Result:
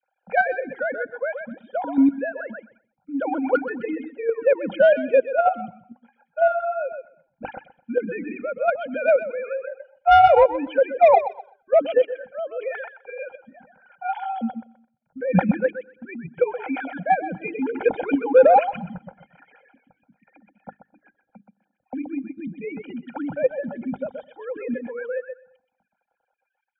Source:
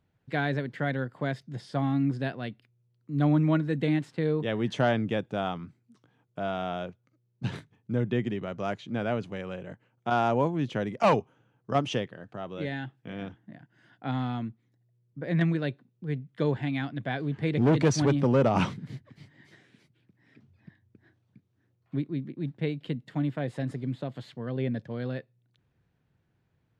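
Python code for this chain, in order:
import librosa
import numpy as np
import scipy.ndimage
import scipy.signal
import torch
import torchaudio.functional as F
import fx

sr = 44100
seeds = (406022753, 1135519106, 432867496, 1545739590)

p1 = fx.sine_speech(x, sr)
p2 = fx.high_shelf(p1, sr, hz=2400.0, db=-10.0)
p3 = fx.hum_notches(p2, sr, base_hz=50, count=9)
p4 = p3 + 0.82 * np.pad(p3, (int(1.3 * sr / 1000.0), 0))[:len(p3)]
p5 = fx.small_body(p4, sr, hz=(520.0, 780.0, 1400.0, 2400.0), ring_ms=35, db=11)
p6 = 10.0 ** (-7.5 / 20.0) * np.tanh(p5 / 10.0 ** (-7.5 / 20.0))
p7 = p6 + fx.echo_feedback(p6, sr, ms=127, feedback_pct=26, wet_db=-7, dry=0)
p8 = fx.dynamic_eq(p7, sr, hz=1300.0, q=2.7, threshold_db=-39.0, ratio=4.0, max_db=-4)
p9 = p8 + 10.0 ** (-20.0 / 20.0) * np.pad(p8, (int(215 * sr / 1000.0), 0))[:len(p8)]
p10 = fx.dereverb_blind(p9, sr, rt60_s=0.62)
p11 = fx.level_steps(p10, sr, step_db=22)
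y = p10 + F.gain(torch.from_numpy(p11), 2.0).numpy()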